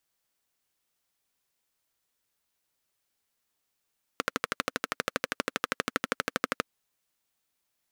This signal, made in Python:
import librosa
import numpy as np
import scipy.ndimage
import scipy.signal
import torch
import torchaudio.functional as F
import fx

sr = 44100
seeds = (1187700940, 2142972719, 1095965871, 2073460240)

y = fx.engine_single(sr, seeds[0], length_s=2.48, rpm=1500, resonances_hz=(270.0, 490.0, 1300.0))